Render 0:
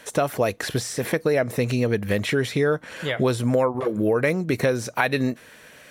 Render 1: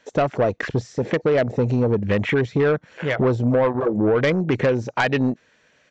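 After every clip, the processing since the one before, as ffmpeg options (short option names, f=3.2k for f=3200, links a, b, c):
-af "afwtdn=0.0316,aresample=16000,asoftclip=type=tanh:threshold=-17dB,aresample=44100,volume=5dB"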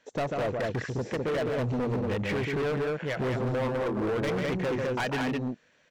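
-af "aecho=1:1:142.9|207:0.501|0.708,asoftclip=type=hard:threshold=-18dB,volume=-8dB"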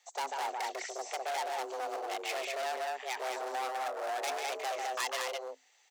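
-af "bass=f=250:g=-10,treble=f=4k:g=15,afreqshift=260,volume=-5.5dB"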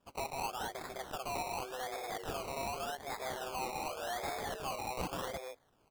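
-af "acrusher=samples=21:mix=1:aa=0.000001:lfo=1:lforange=12.6:lforate=0.87,volume=-3.5dB"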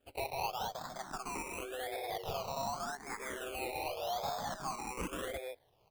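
-filter_complex "[0:a]asplit=2[a][b];[b]afreqshift=0.56[c];[a][c]amix=inputs=2:normalize=1,volume=3dB"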